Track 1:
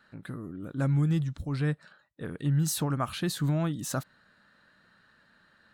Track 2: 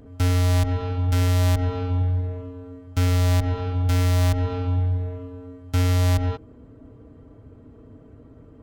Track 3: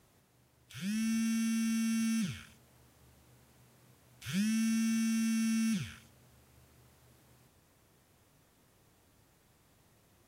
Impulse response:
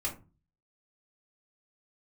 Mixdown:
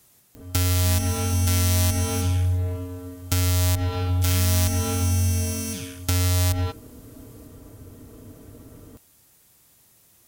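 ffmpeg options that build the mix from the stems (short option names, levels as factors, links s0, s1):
-filter_complex "[1:a]acompressor=threshold=0.0708:ratio=6,adelay=350,volume=1.19,asplit=2[s0][s1];[s1]volume=0.0841[s2];[2:a]acrossover=split=340|3000[s3][s4][s5];[s3]acompressor=threshold=0.0178:ratio=6[s6];[s6][s4][s5]amix=inputs=3:normalize=0,volume=42.2,asoftclip=hard,volume=0.0237,volume=1.06[s7];[3:a]atrim=start_sample=2205[s8];[s2][s8]afir=irnorm=-1:irlink=0[s9];[s0][s7][s9]amix=inputs=3:normalize=0,crystalizer=i=4:c=0"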